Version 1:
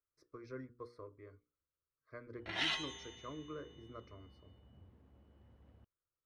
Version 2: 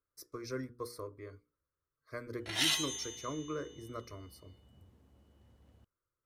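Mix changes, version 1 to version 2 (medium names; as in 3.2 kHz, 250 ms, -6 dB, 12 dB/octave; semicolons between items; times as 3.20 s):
speech +7.5 dB; master: remove low-pass 2.6 kHz 12 dB/octave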